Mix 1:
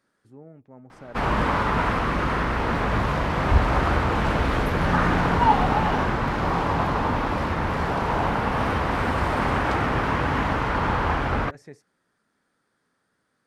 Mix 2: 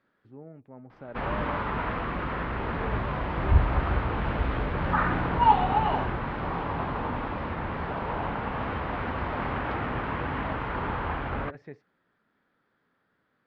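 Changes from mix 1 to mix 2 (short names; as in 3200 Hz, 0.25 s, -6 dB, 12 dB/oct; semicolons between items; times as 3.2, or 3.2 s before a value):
first sound -7.5 dB; master: add LPF 3500 Hz 24 dB/oct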